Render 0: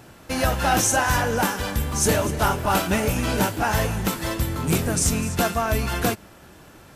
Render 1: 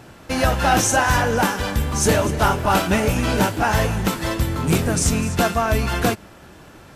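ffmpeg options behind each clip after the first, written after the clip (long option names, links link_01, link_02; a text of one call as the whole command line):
ffmpeg -i in.wav -af "highshelf=frequency=9000:gain=-8,volume=3.5dB" out.wav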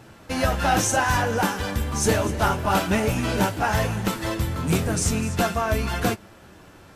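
ffmpeg -i in.wav -af "flanger=delay=9:depth=1.9:regen=-42:speed=0.96:shape=sinusoidal" out.wav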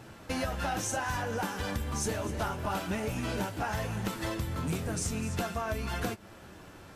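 ffmpeg -i in.wav -af "acompressor=threshold=-28dB:ratio=6,volume=-2dB" out.wav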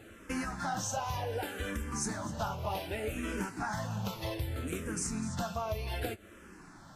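ffmpeg -i in.wav -filter_complex "[0:a]asplit=2[link_01][link_02];[link_02]afreqshift=-0.65[link_03];[link_01][link_03]amix=inputs=2:normalize=1" out.wav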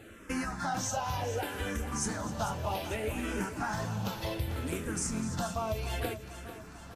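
ffmpeg -i in.wav -af "aecho=1:1:444|888|1332|1776|2220|2664:0.237|0.133|0.0744|0.0416|0.0233|0.0131,volume=1.5dB" out.wav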